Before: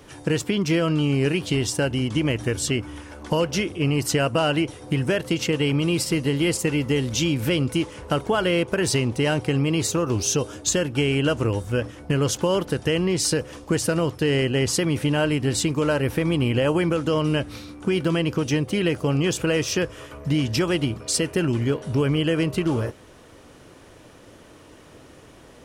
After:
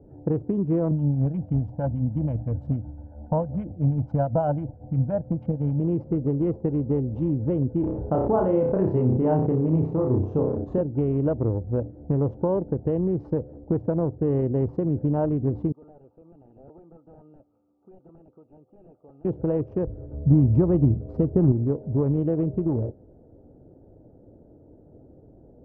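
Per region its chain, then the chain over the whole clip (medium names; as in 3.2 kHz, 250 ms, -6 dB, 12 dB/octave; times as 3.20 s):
0.91–5.80 s: comb 1.3 ms, depth 89% + harmonic tremolo 6.1 Hz, depth 50%, crossover 1.5 kHz
7.80–10.81 s: flutter echo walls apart 5.4 m, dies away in 0.47 s + decay stretcher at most 34 dB/s
15.72–19.25 s: two resonant band-passes 1.8 kHz, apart 1.2 oct + integer overflow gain 29.5 dB
19.87–21.52 s: bass shelf 200 Hz +11.5 dB + companded quantiser 6-bit
whole clip: local Wiener filter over 41 samples; Chebyshev low-pass 870 Hz, order 3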